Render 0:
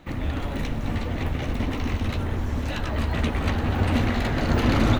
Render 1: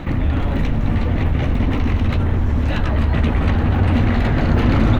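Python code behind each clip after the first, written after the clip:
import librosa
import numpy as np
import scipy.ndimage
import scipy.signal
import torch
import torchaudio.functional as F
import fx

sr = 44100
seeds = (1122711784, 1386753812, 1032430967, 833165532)

y = fx.bass_treble(x, sr, bass_db=5, treble_db=-10)
y = fx.env_flatten(y, sr, amount_pct=50)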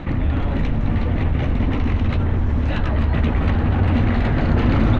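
y = fx.air_absorb(x, sr, metres=75.0)
y = y * 10.0 ** (-1.5 / 20.0)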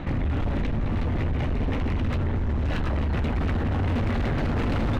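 y = np.clip(x, -10.0 ** (-19.5 / 20.0), 10.0 ** (-19.5 / 20.0))
y = y * 10.0 ** (-2.5 / 20.0)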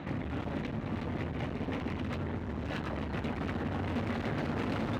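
y = scipy.signal.sosfilt(scipy.signal.butter(2, 130.0, 'highpass', fs=sr, output='sos'), x)
y = y * 10.0 ** (-5.5 / 20.0)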